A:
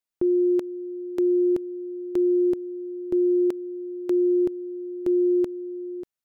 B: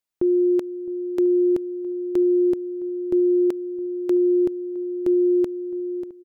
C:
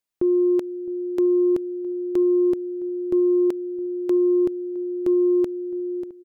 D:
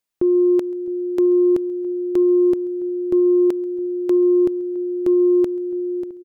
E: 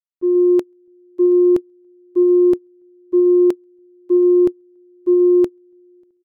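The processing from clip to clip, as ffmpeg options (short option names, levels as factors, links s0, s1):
-filter_complex "[0:a]asplit=2[s0][s1];[s1]adelay=663,lowpass=f=810:p=1,volume=0.126,asplit=2[s2][s3];[s3]adelay=663,lowpass=f=810:p=1,volume=0.4,asplit=2[s4][s5];[s5]adelay=663,lowpass=f=810:p=1,volume=0.4[s6];[s0][s2][s4][s6]amix=inputs=4:normalize=0,volume=1.26"
-af "acontrast=57,volume=0.501"
-af "aecho=1:1:135|270|405:0.0668|0.0274|0.0112,volume=1.41"
-af "agate=range=0.0355:threshold=0.158:ratio=16:detection=peak,volume=1.5"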